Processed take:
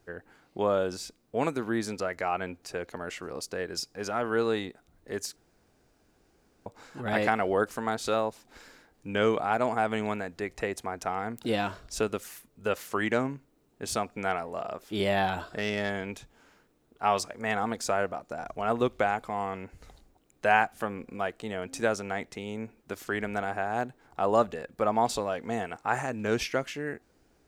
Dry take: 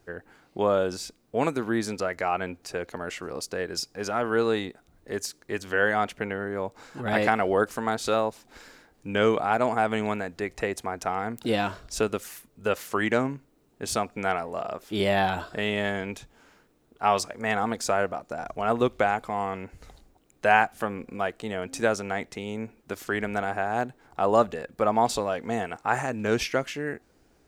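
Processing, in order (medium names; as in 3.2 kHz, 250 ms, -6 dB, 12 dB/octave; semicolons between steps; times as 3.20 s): 5.36–6.66 s: room tone; 15.45–15.90 s: self-modulated delay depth 0.055 ms; trim -3 dB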